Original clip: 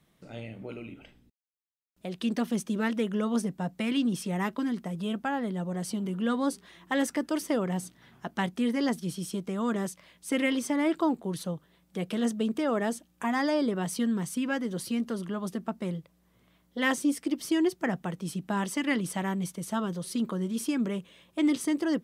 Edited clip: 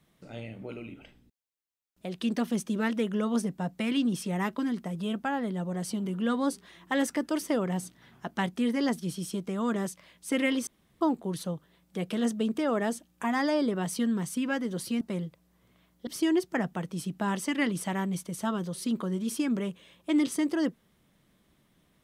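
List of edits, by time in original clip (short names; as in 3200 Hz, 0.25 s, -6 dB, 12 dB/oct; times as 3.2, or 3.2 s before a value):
10.67–11.01 room tone
15.01–15.73 cut
16.79–17.36 cut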